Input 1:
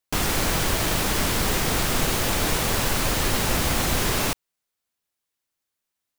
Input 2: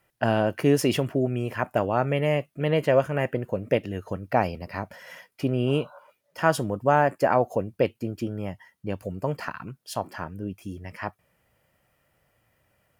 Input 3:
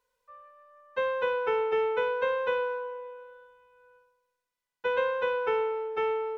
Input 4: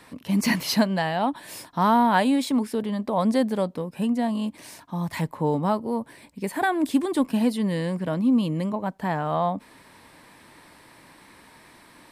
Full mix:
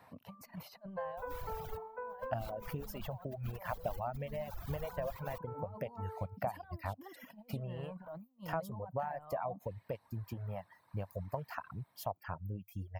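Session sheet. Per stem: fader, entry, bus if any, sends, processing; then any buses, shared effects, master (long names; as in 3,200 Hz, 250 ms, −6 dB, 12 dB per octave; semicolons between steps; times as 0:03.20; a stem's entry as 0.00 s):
−5.0 dB, 1.05 s, bus B, no send, reverb reduction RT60 1.8 s; brickwall limiter −21 dBFS, peak gain reduction 9 dB
+2.0 dB, 2.10 s, bus A, no send, reverb reduction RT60 0.63 s
−2.5 dB, 0.00 s, bus A, no send, low-pass filter 1,600 Hz 24 dB per octave
−5.5 dB, 0.00 s, bus B, no send, high-pass filter 120 Hz 12 dB per octave; notch filter 3,400 Hz, Q 16
bus A: 0.0 dB, high-shelf EQ 4,100 Hz +8.5 dB; downward compressor 10 to 1, threshold −27 dBFS, peak gain reduction 15.5 dB
bus B: 0.0 dB, compressor whose output falls as the input rises −34 dBFS, ratio −0.5; brickwall limiter −28.5 dBFS, peak gain reduction 10.5 dB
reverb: not used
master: reverb reduction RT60 1.5 s; drawn EQ curve 100 Hz 0 dB, 340 Hz −18 dB, 690 Hz −2 dB, 1,800 Hz −13 dB, 9,700 Hz −22 dB, 14,000 Hz −7 dB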